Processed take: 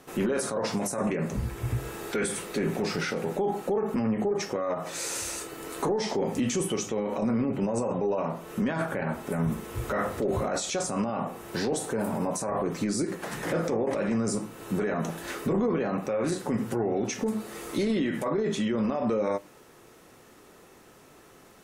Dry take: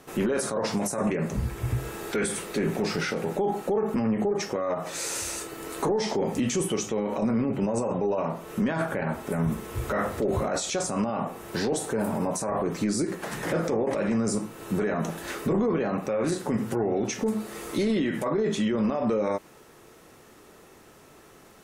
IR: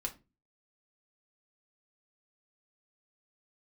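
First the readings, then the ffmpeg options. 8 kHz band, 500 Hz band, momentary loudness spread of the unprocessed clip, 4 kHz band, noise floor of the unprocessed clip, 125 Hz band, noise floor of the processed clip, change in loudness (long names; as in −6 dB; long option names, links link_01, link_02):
−1.5 dB, −1.5 dB, 5 LU, −1.5 dB, −53 dBFS, −1.5 dB, −54 dBFS, −1.5 dB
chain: -filter_complex "[0:a]asplit=2[link_01][link_02];[link_02]highpass=61[link_03];[1:a]atrim=start_sample=2205[link_04];[link_03][link_04]afir=irnorm=-1:irlink=0,volume=-12dB[link_05];[link_01][link_05]amix=inputs=2:normalize=0,volume=-3dB"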